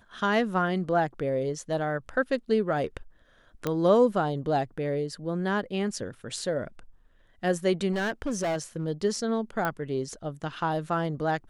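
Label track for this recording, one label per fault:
3.670000	3.670000	pop -14 dBFS
7.920000	8.860000	clipped -25 dBFS
9.650000	9.650000	pop -15 dBFS

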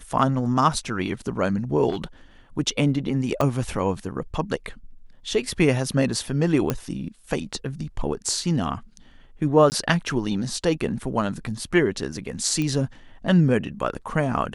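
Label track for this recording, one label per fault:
1.900000	2.040000	clipped -22 dBFS
3.410000	3.410000	pop -10 dBFS
6.700000	6.700000	pop -9 dBFS
9.700000	9.720000	gap 19 ms
12.620000	12.620000	pop -14 dBFS

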